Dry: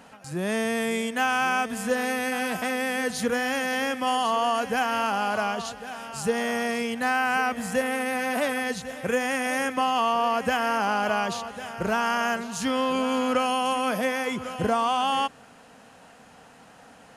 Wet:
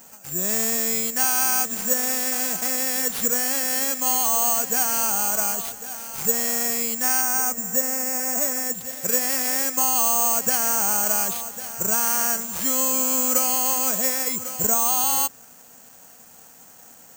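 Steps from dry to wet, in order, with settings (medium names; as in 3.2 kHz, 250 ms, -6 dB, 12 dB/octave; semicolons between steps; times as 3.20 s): 7.21–8.81 s: Bessel low-pass 1.8 kHz, order 2; careless resampling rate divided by 6×, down none, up zero stuff; trim -4.5 dB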